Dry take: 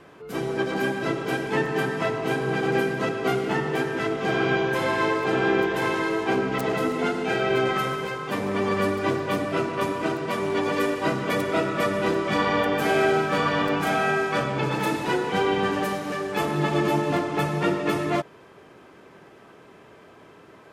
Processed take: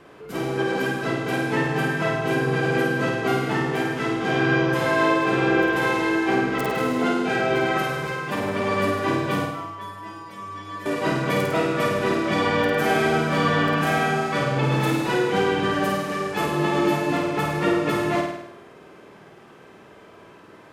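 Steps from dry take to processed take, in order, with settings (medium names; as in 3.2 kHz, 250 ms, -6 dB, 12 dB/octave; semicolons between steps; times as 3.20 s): 9.45–10.86 s: inharmonic resonator 100 Hz, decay 0.61 s, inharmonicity 0.008; flutter echo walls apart 8.9 m, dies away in 0.82 s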